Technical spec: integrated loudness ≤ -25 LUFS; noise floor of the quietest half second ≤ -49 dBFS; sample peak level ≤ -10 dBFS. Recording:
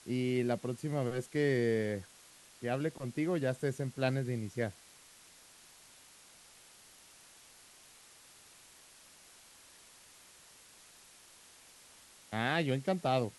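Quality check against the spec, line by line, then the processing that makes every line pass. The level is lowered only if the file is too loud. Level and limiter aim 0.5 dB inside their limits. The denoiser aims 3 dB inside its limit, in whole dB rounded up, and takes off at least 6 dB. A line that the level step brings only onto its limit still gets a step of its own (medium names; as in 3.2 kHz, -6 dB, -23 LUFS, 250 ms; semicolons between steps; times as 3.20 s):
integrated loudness -34.5 LUFS: pass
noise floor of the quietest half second -59 dBFS: pass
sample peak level -17.5 dBFS: pass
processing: none needed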